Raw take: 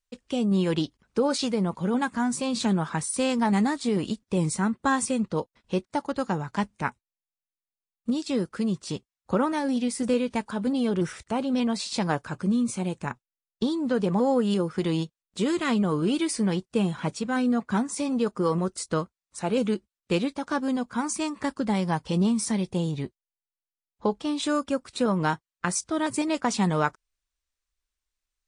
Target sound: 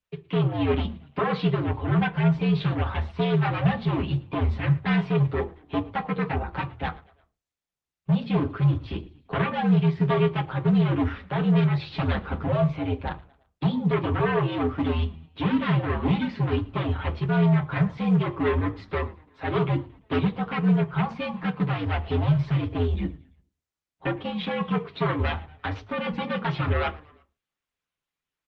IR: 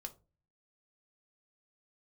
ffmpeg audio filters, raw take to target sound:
-filter_complex "[0:a]asplit=3[s0][s1][s2];[s0]afade=t=out:st=11.8:d=0.02[s3];[s1]equalizer=f=280:w=1.4:g=7.5,afade=t=in:st=11.8:d=0.02,afade=t=out:st=12.61:d=0.02[s4];[s2]afade=t=in:st=12.61:d=0.02[s5];[s3][s4][s5]amix=inputs=3:normalize=0,acrossover=split=160[s6][s7];[s6]acompressor=mode=upward:threshold=0.00126:ratio=2.5[s8];[s7]aeval=exprs='0.0708*(abs(mod(val(0)/0.0708+3,4)-2)-1)':c=same[s9];[s8][s9]amix=inputs=2:normalize=0,asplit=4[s10][s11][s12][s13];[s11]adelay=113,afreqshift=-41,volume=0.0841[s14];[s12]adelay=226,afreqshift=-82,volume=0.0412[s15];[s13]adelay=339,afreqshift=-123,volume=0.0202[s16];[s10][s14][s15][s16]amix=inputs=4:normalize=0,asplit=2[s17][s18];[1:a]atrim=start_sample=2205,adelay=8[s19];[s18][s19]afir=irnorm=-1:irlink=0,volume=2[s20];[s17][s20]amix=inputs=2:normalize=0,highpass=f=150:t=q:w=0.5412,highpass=f=150:t=q:w=1.307,lowpass=f=3500:t=q:w=0.5176,lowpass=f=3500:t=q:w=0.7071,lowpass=f=3500:t=q:w=1.932,afreqshift=-81" -ar 48000 -c:a libopus -b:a 24k

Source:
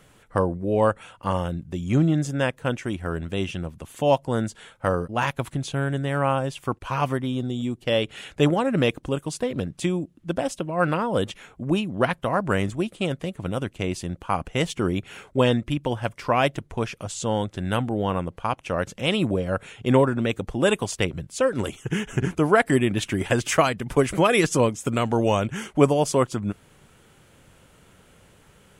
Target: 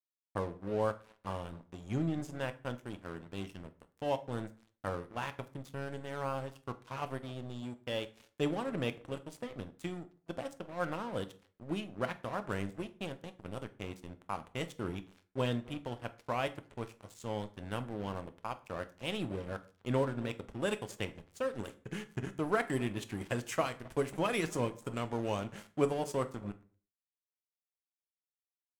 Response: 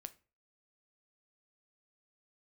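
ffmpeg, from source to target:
-filter_complex "[0:a]asplit=2[s0][s1];[s1]adelay=264,lowpass=f=950:p=1,volume=0.133,asplit=2[s2][s3];[s3]adelay=264,lowpass=f=950:p=1,volume=0.33,asplit=2[s4][s5];[s5]adelay=264,lowpass=f=950:p=1,volume=0.33[s6];[s0][s2][s4][s6]amix=inputs=4:normalize=0,aeval=exprs='sgn(val(0))*max(abs(val(0))-0.0237,0)':c=same[s7];[1:a]atrim=start_sample=2205,asetrate=34839,aresample=44100[s8];[s7][s8]afir=irnorm=-1:irlink=0,volume=0.398"

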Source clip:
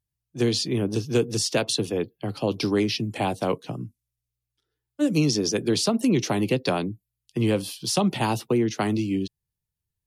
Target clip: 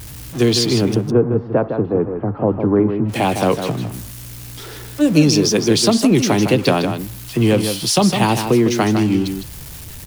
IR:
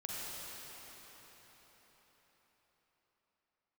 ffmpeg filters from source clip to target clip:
-filter_complex "[0:a]aeval=exprs='val(0)+0.5*0.02*sgn(val(0))':c=same,asplit=3[s0][s1][s2];[s0]afade=t=out:st=0.94:d=0.02[s3];[s1]lowpass=f=1300:w=0.5412,lowpass=f=1300:w=1.3066,afade=t=in:st=0.94:d=0.02,afade=t=out:st=3.08:d=0.02[s4];[s2]afade=t=in:st=3.08:d=0.02[s5];[s3][s4][s5]amix=inputs=3:normalize=0,aecho=1:1:157:0.422,volume=2.24"

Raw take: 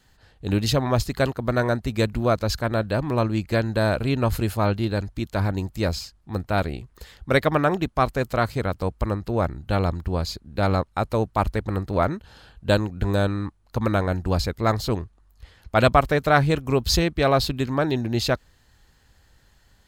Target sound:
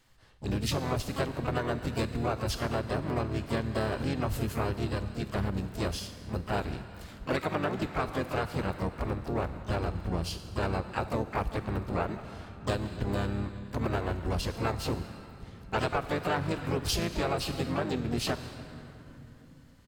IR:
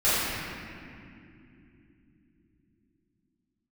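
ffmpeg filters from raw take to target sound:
-filter_complex "[0:a]asplit=2[s0][s1];[1:a]atrim=start_sample=2205,asetrate=35721,aresample=44100,highshelf=f=2500:g=11.5[s2];[s1][s2]afir=irnorm=-1:irlink=0,volume=0.0237[s3];[s0][s3]amix=inputs=2:normalize=0,asplit=4[s4][s5][s6][s7];[s5]asetrate=29433,aresample=44100,atempo=1.49831,volume=0.708[s8];[s6]asetrate=52444,aresample=44100,atempo=0.840896,volume=0.501[s9];[s7]asetrate=88200,aresample=44100,atempo=0.5,volume=0.355[s10];[s4][s8][s9][s10]amix=inputs=4:normalize=0,acompressor=threshold=0.126:ratio=6,volume=0.398"

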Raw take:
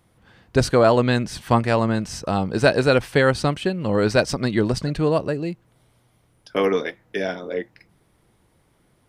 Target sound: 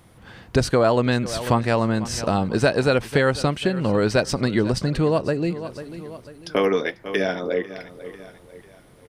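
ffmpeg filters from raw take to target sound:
-af "aecho=1:1:494|988|1482:0.106|0.0434|0.0178,acompressor=threshold=0.0224:ratio=2,volume=2.82"

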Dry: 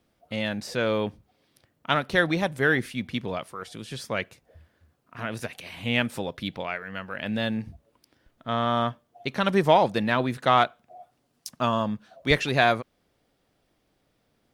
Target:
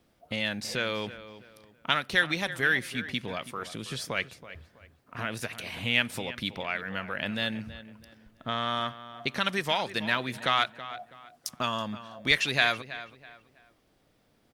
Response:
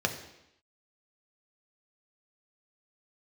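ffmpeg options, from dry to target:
-filter_complex "[0:a]acrossover=split=1500[s0][s1];[s0]acompressor=threshold=0.0158:ratio=4[s2];[s2][s1]amix=inputs=2:normalize=0,asplit=2[s3][s4];[s4]adelay=326,lowpass=f=3100:p=1,volume=0.2,asplit=2[s5][s6];[s6]adelay=326,lowpass=f=3100:p=1,volume=0.33,asplit=2[s7][s8];[s8]adelay=326,lowpass=f=3100:p=1,volume=0.33[s9];[s3][s5][s7][s9]amix=inputs=4:normalize=0,volume=1.33"

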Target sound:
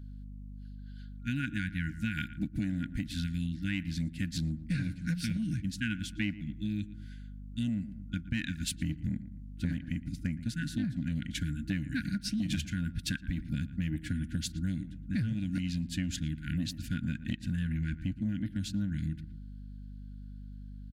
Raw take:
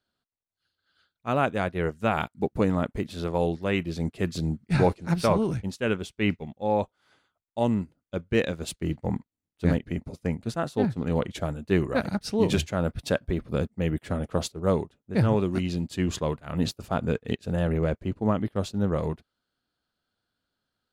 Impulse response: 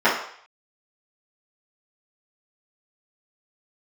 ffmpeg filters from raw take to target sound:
-filter_complex "[0:a]aeval=exprs='val(0)+0.00447*(sin(2*PI*50*n/s)+sin(2*PI*2*50*n/s)/2+sin(2*PI*3*50*n/s)/3+sin(2*PI*4*50*n/s)/4+sin(2*PI*5*50*n/s)/5)':c=same,afftfilt=real='re*(1-between(b*sr/4096,320,1400))':imag='im*(1-between(b*sr/4096,320,1400))':win_size=4096:overlap=0.75,asplit=2[s0][s1];[s1]asoftclip=type=hard:threshold=0.0708,volume=0.282[s2];[s0][s2]amix=inputs=2:normalize=0,asplit=2[s3][s4];[s4]adelay=115,lowpass=f=1600:p=1,volume=0.15,asplit=2[s5][s6];[s6]adelay=115,lowpass=f=1600:p=1,volume=0.3,asplit=2[s7][s8];[s8]adelay=115,lowpass=f=1600:p=1,volume=0.3[s9];[s3][s5][s7][s9]amix=inputs=4:normalize=0,acompressor=threshold=0.0251:ratio=6,volume=1.26"

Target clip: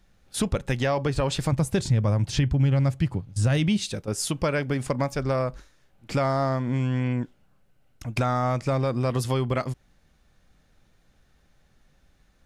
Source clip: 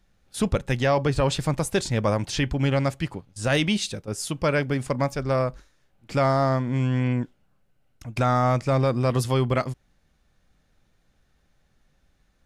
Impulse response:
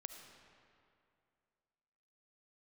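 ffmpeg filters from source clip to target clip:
-filter_complex "[0:a]asettb=1/sr,asplit=3[s0][s1][s2];[s0]atrim=end=1.524[s3];[s1]atrim=start=1.52:end=3.84,asetpts=PTS-STARTPTS,afade=t=in:d=0.004:c=qsin,afade=t=out:st=2.316:d=0.004:c=qsin,equalizer=f=110:t=o:w=1.9:g=13.5[s4];[s2]atrim=start=3.836[s5];[s3][s4]acrossfade=d=0.004:c1=hsin:c2=qsin[s6];[s6][s5]acrossfade=d=0.004:c1=qsin:c2=hsin,acompressor=threshold=0.0501:ratio=3,volume=1.5"

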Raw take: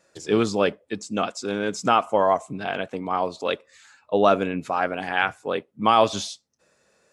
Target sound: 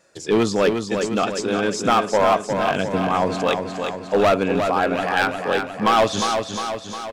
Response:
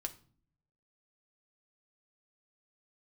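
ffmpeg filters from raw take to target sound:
-filter_complex "[0:a]asettb=1/sr,asplit=3[s0][s1][s2];[s0]atrim=end=2.704[s3];[s1]atrim=start=2.7:end=3.49,asetpts=PTS-STARTPTS,afade=t=in:d=0.004:c=qsin,afade=t=out:st=0.786:d=0.004:c=qsin,bass=f=250:g=9,treble=f=4000:g=5[s4];[s2]atrim=start=3.486[s5];[s3][s4]acrossfade=d=0.004:c1=hsin:c2=qsin[s6];[s6][s5]acrossfade=d=0.004:c1=qsin:c2=hsin,asoftclip=type=hard:threshold=0.168,asplit=2[s7][s8];[s8]aecho=0:1:356|712|1068|1424|1780|2136|2492|2848:0.501|0.291|0.169|0.0978|0.0567|0.0329|0.0191|0.0111[s9];[s7][s9]amix=inputs=2:normalize=0,volume=1.58"

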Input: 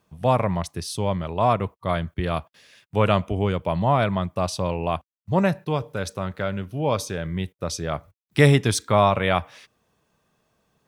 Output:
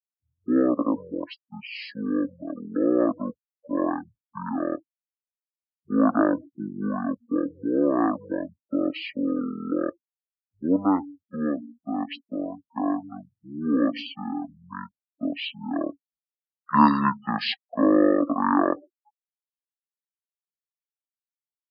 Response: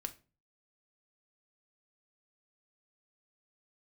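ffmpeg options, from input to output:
-af "afftfilt=real='re*gte(hypot(re,im),0.0251)':imag='im*gte(hypot(re,im),0.0251)':win_size=1024:overlap=0.75,highpass=f=430:w=0.5412,highpass=f=430:w=1.3066,equalizer=f=550:t=q:w=4:g=5,equalizer=f=810:t=q:w=4:g=-10,equalizer=f=2100:t=q:w=4:g=7,equalizer=f=4000:t=q:w=4:g=-8,lowpass=f=8500:w=0.5412,lowpass=f=8500:w=1.3066,asetrate=22094,aresample=44100"

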